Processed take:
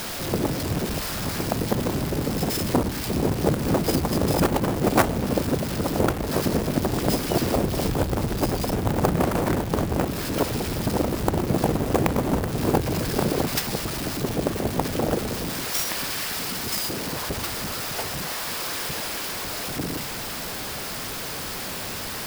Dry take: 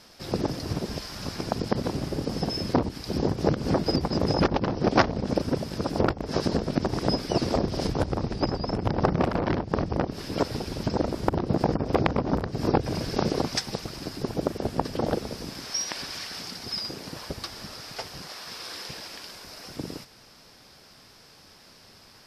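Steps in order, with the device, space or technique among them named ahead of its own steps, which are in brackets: early CD player with a faulty converter (jump at every zero crossing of -26 dBFS; sampling jitter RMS 0.039 ms)

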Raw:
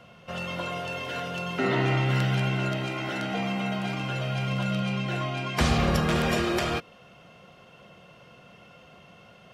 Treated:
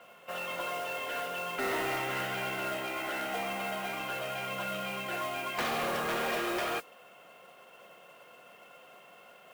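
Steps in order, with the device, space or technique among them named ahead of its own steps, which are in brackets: carbon microphone (band-pass 440–3000 Hz; saturation -27 dBFS, distortion -14 dB; modulation noise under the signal 14 dB)

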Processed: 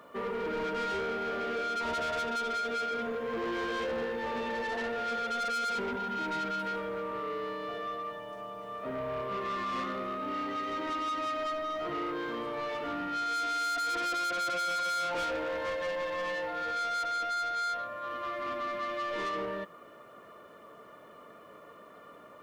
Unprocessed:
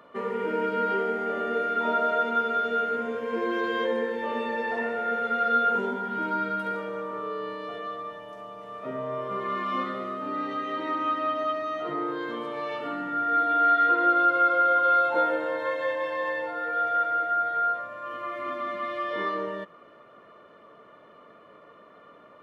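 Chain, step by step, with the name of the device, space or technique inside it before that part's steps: open-reel tape (saturation -30.5 dBFS, distortion -7 dB; peaking EQ 63 Hz +4 dB; white noise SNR 41 dB)

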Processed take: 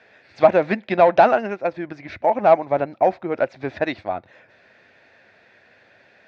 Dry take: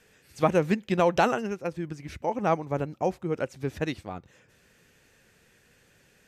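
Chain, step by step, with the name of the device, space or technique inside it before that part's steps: overdrive pedal into a guitar cabinet (overdrive pedal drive 14 dB, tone 4.4 kHz, clips at -9 dBFS; cabinet simulation 92–3900 Hz, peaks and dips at 96 Hz +4 dB, 160 Hz -7 dB, 450 Hz -5 dB, 650 Hz +9 dB, 1.2 kHz -5 dB, 3 kHz -10 dB); trim +3.5 dB

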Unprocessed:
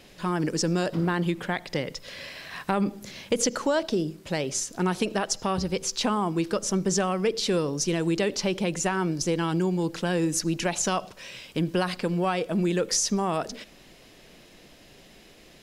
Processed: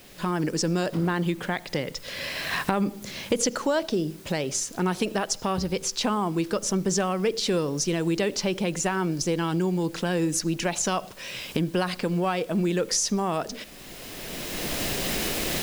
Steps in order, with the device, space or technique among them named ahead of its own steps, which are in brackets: cheap recorder with automatic gain (white noise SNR 28 dB; recorder AGC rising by 16 dB/s)

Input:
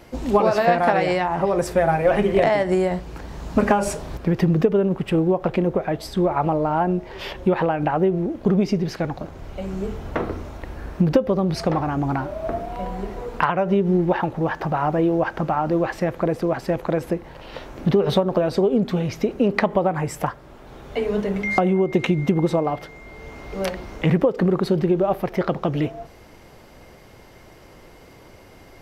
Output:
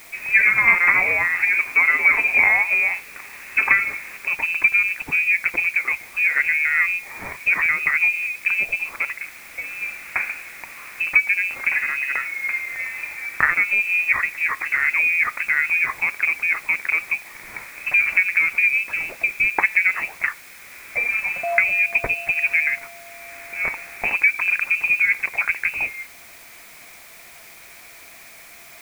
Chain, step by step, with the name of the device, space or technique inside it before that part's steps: scrambled radio voice (band-pass 330–3000 Hz; frequency inversion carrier 2.8 kHz; white noise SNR 24 dB); trim +2.5 dB

